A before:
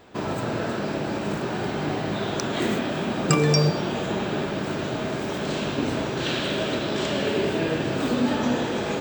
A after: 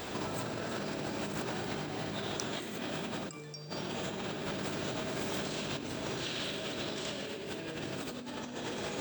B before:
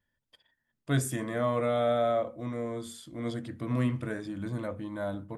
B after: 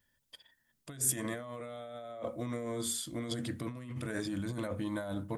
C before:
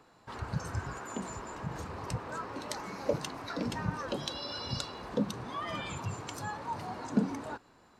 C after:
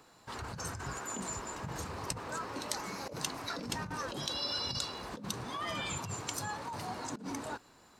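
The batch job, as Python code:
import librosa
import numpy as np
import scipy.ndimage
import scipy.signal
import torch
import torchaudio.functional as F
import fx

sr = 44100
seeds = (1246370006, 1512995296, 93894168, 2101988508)

y = fx.over_compress(x, sr, threshold_db=-37.0, ratio=-1.0)
y = fx.high_shelf(y, sr, hz=3800.0, db=11.0)
y = y * librosa.db_to_amplitude(-2.5)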